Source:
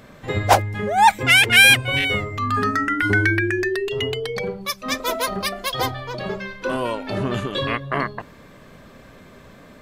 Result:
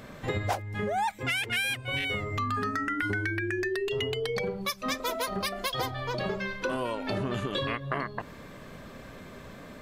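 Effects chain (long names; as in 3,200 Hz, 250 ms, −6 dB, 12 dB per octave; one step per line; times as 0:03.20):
downward compressor 10 to 1, threshold −27 dBFS, peak gain reduction 19.5 dB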